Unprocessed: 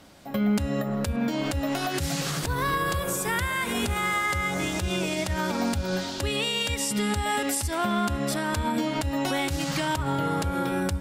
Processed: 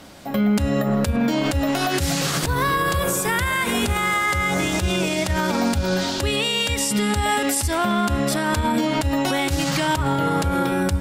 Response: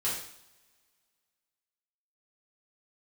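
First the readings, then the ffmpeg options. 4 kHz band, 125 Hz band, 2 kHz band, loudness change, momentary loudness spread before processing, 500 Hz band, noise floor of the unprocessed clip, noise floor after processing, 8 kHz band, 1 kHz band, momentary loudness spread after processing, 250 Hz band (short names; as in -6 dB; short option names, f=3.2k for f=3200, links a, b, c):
+6.0 dB, +6.0 dB, +5.5 dB, +6.0 dB, 3 LU, +6.0 dB, -32 dBFS, -26 dBFS, +5.5 dB, +5.5 dB, 2 LU, +6.0 dB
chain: -af "bandreject=f=50:t=h:w=6,bandreject=f=100:t=h:w=6,bandreject=f=150:t=h:w=6,alimiter=limit=-21dB:level=0:latency=1:release=56,volume=8.5dB"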